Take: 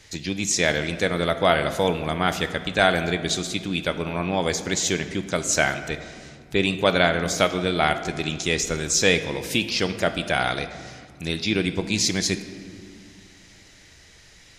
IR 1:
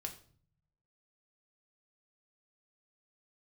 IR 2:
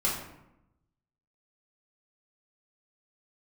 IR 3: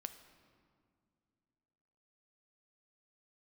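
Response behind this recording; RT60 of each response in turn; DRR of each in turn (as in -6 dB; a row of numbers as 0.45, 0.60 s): 3; 0.50 s, 0.85 s, not exponential; 3.0, -6.5, 9.0 dB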